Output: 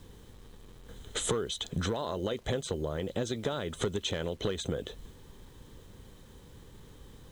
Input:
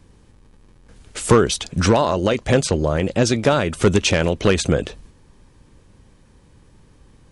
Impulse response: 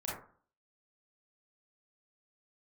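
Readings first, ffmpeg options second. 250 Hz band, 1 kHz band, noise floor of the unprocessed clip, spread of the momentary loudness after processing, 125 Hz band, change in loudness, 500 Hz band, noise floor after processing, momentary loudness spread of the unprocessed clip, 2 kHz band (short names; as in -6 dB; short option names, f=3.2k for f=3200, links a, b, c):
-16.5 dB, -17.0 dB, -52 dBFS, 21 LU, -16.0 dB, -15.5 dB, -15.0 dB, -54 dBFS, 5 LU, -17.5 dB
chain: -af "superequalizer=7b=1.58:12b=0.562:13b=2:14b=0.398:16b=0.501,acompressor=threshold=-28dB:ratio=8,acrusher=bits=9:mix=0:aa=0.000001,volume=-1.5dB"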